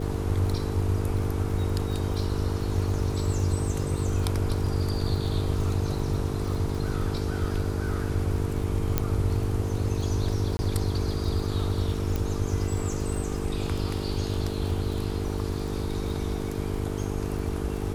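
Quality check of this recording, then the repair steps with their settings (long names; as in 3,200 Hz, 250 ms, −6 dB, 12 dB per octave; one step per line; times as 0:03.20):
mains buzz 50 Hz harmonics 9 −32 dBFS
surface crackle 54 per second −34 dBFS
0:08.98: click −9 dBFS
0:10.57–0:10.59: drop-out 20 ms
0:12.16: click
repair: click removal
hum removal 50 Hz, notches 9
repair the gap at 0:10.57, 20 ms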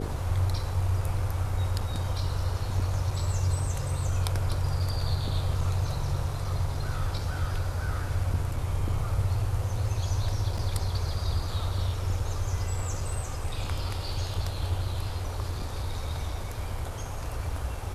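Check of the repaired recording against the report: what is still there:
0:12.16: click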